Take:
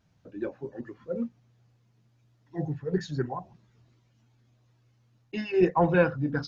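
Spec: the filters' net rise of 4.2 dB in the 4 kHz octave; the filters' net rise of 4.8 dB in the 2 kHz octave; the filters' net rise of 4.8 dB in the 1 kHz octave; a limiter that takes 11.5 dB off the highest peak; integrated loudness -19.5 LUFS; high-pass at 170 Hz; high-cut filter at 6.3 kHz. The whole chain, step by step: high-pass 170 Hz; low-pass 6.3 kHz; peaking EQ 1 kHz +5 dB; peaking EQ 2 kHz +3.5 dB; peaking EQ 4 kHz +5 dB; trim +12.5 dB; peak limiter -6 dBFS

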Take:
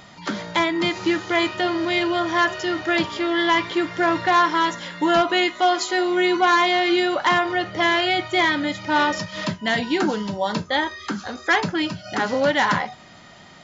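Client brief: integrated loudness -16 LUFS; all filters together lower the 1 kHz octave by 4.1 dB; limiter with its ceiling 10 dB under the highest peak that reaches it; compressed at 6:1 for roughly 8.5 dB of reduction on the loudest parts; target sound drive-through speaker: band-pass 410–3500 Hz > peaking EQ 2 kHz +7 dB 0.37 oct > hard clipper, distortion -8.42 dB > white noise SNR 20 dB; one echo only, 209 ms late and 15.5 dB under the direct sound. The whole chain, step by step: peaking EQ 1 kHz -5.5 dB; compression 6:1, threshold -26 dBFS; peak limiter -24.5 dBFS; band-pass 410–3500 Hz; peaking EQ 2 kHz +7 dB 0.37 oct; delay 209 ms -15.5 dB; hard clipper -32.5 dBFS; white noise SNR 20 dB; trim +19 dB

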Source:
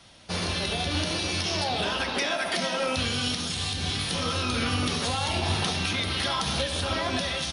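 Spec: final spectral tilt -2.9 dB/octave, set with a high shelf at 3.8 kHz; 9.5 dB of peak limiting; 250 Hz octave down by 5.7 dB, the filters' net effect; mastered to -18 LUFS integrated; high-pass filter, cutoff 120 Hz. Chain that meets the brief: high-pass 120 Hz; peaking EQ 250 Hz -7 dB; treble shelf 3.8 kHz -5.5 dB; trim +16 dB; peak limiter -10 dBFS

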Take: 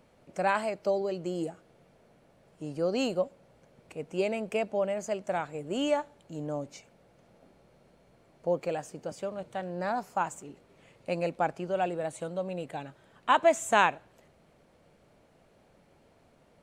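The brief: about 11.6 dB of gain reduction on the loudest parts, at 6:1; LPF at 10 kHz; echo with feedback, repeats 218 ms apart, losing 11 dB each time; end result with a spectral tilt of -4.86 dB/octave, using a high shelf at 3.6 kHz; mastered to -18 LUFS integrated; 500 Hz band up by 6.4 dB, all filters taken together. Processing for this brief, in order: low-pass 10 kHz; peaking EQ 500 Hz +8 dB; treble shelf 3.6 kHz +5 dB; compression 6:1, threshold -25 dBFS; feedback delay 218 ms, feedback 28%, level -11 dB; trim +13.5 dB

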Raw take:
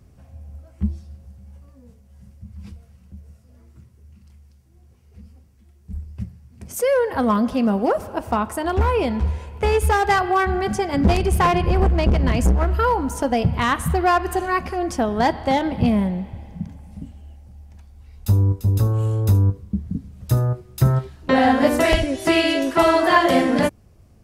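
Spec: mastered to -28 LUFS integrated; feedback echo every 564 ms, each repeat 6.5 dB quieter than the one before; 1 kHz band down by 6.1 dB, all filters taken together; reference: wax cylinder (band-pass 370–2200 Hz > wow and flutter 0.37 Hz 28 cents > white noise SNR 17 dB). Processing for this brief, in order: band-pass 370–2200 Hz; peaking EQ 1 kHz -8 dB; feedback delay 564 ms, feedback 47%, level -6.5 dB; wow and flutter 0.37 Hz 28 cents; white noise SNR 17 dB; trim -3 dB

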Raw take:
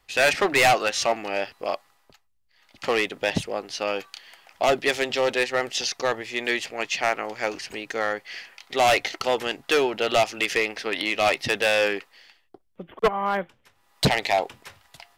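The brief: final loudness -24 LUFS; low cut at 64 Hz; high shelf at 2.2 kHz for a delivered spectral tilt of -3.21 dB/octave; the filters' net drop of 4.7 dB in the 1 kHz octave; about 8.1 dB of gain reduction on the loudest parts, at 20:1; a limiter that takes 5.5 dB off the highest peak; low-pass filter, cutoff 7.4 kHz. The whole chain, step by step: high-pass 64 Hz; low-pass 7.4 kHz; peaking EQ 1 kHz -6.5 dB; treble shelf 2.2 kHz -4.5 dB; compression 20:1, threshold -25 dBFS; trim +9 dB; peak limiter -13 dBFS

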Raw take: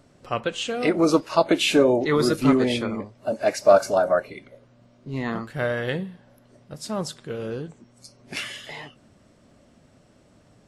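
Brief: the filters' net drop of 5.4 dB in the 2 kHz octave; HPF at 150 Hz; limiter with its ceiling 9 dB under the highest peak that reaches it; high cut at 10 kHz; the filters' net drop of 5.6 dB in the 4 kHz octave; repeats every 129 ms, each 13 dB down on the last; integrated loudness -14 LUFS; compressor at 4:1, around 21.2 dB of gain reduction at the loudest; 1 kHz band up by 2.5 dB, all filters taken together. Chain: high-pass 150 Hz; low-pass 10 kHz; peaking EQ 1 kHz +6 dB; peaking EQ 2 kHz -8.5 dB; peaking EQ 4 kHz -4.5 dB; compression 4:1, threshold -35 dBFS; peak limiter -28.5 dBFS; feedback delay 129 ms, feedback 22%, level -13 dB; trim +25.5 dB

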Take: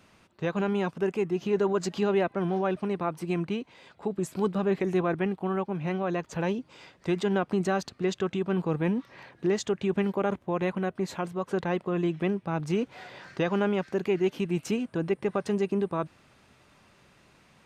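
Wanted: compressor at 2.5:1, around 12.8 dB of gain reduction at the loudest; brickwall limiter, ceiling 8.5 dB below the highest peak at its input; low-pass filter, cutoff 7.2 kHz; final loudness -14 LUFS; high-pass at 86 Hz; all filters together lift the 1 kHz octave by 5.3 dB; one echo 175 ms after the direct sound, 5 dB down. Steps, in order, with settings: high-pass 86 Hz; low-pass 7.2 kHz; peaking EQ 1 kHz +7 dB; compression 2.5:1, threshold -40 dBFS; peak limiter -31 dBFS; delay 175 ms -5 dB; trim +27 dB

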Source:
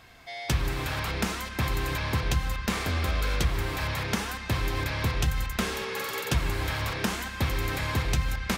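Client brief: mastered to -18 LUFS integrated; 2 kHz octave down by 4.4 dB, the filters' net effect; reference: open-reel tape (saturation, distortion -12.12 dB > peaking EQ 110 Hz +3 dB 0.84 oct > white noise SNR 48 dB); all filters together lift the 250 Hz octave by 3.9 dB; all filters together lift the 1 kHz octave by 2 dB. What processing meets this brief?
peaking EQ 250 Hz +4.5 dB; peaking EQ 1 kHz +4 dB; peaking EQ 2 kHz -7 dB; saturation -24 dBFS; peaking EQ 110 Hz +3 dB 0.84 oct; white noise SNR 48 dB; trim +13 dB

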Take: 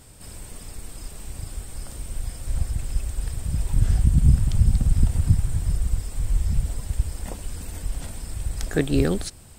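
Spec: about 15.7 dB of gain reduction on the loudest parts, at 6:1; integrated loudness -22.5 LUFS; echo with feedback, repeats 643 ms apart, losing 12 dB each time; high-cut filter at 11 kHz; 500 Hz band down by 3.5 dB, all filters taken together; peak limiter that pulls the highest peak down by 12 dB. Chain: low-pass 11 kHz; peaking EQ 500 Hz -4.5 dB; compression 6:1, threshold -29 dBFS; peak limiter -27.5 dBFS; feedback delay 643 ms, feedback 25%, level -12 dB; trim +17 dB

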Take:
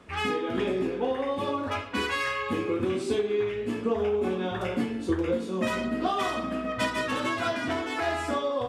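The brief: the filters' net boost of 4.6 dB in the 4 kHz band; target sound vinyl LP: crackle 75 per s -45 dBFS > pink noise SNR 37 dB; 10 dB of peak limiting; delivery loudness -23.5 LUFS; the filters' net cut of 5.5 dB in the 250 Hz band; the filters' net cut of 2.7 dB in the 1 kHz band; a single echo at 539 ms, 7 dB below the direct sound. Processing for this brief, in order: peaking EQ 250 Hz -7 dB; peaking EQ 1 kHz -3.5 dB; peaking EQ 4 kHz +6.5 dB; peak limiter -25 dBFS; delay 539 ms -7 dB; crackle 75 per s -45 dBFS; pink noise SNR 37 dB; trim +9 dB

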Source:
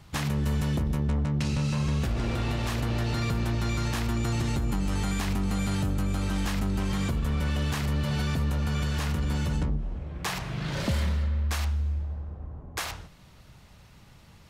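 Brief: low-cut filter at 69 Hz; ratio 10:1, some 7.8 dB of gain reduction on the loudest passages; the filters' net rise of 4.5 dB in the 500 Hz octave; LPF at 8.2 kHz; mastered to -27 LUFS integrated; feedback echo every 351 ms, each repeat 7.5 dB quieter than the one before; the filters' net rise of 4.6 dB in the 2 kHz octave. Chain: high-pass 69 Hz; low-pass 8.2 kHz; peaking EQ 500 Hz +5.5 dB; peaking EQ 2 kHz +5.5 dB; compression 10:1, threshold -30 dBFS; feedback delay 351 ms, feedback 42%, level -7.5 dB; trim +7 dB

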